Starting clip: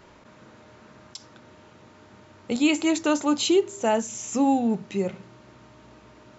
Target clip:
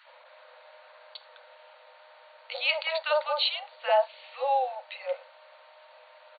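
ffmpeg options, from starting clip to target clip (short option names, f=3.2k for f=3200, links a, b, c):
-filter_complex "[0:a]acrossover=split=1200[a][b];[a]adelay=50[c];[c][b]amix=inputs=2:normalize=0,afftfilt=real='re*between(b*sr/4096,490,4600)':imag='im*between(b*sr/4096,490,4600)':win_size=4096:overlap=0.75,volume=2dB" -ar 48000 -c:a aac -b:a 96k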